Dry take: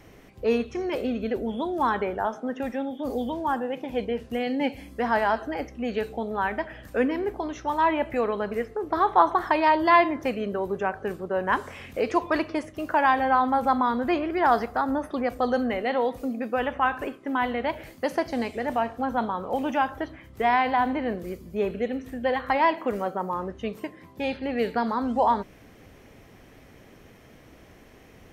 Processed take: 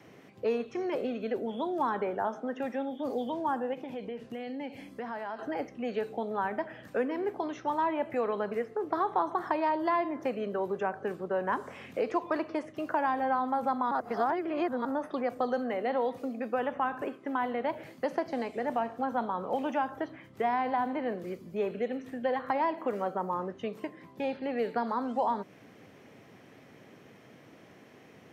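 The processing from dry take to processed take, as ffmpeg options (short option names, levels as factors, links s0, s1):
-filter_complex "[0:a]asettb=1/sr,asplit=3[s0][s1][s2];[s0]atrim=end=3.734[s3];[s1]atrim=start=3.73:end=5.39,asetpts=PTS-STARTPTS,afade=t=in:d=0.004:c=qsin,afade=t=out:st=1.656:d=0.004:c=qsin,acompressor=threshold=0.0224:ratio=4:attack=3.2:release=140:knee=1:detection=peak[s4];[s2]atrim=start=5.386[s5];[s3][s4]acrossfade=d=0.004:c1=hsin:c2=qsin[s6];[s6][s5]acrossfade=d=0.004:c1=qsin:c2=hsin,asplit=3[s7][s8][s9];[s7]atrim=end=13.912[s10];[s8]atrim=start=13.908:end=14.852,asetpts=PTS-STARTPTS,areverse[s11];[s9]atrim=start=14.848[s12];[s10][s11]acrossfade=d=0.004:c1=hsin:c2=hsin[s13];[s13][s12]acrossfade=d=0.004:c1=hsin:c2=hsin,acrossover=split=370|1500|5500[s14][s15][s16][s17];[s14]acompressor=threshold=0.0158:ratio=4[s18];[s15]acompressor=threshold=0.0562:ratio=4[s19];[s16]acompressor=threshold=0.00562:ratio=4[s20];[s17]acompressor=threshold=0.00126:ratio=4[s21];[s18][s19][s20][s21]amix=inputs=4:normalize=0,highpass=f=120:w=0.5412,highpass=f=120:w=1.3066,highshelf=f=7500:g=-9,volume=0.794"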